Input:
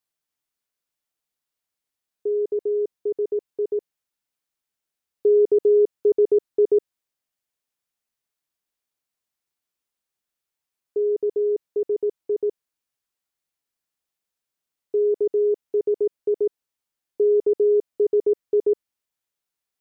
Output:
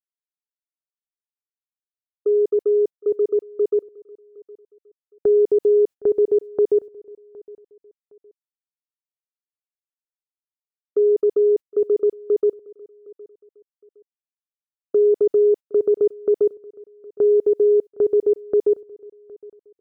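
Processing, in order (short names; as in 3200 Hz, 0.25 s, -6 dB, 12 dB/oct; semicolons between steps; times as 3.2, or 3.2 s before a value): gate -27 dBFS, range -35 dB; limiter -17 dBFS, peak gain reduction 5 dB; on a send: feedback echo 0.763 s, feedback 29%, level -23 dB; on the sum: gain +5.5 dB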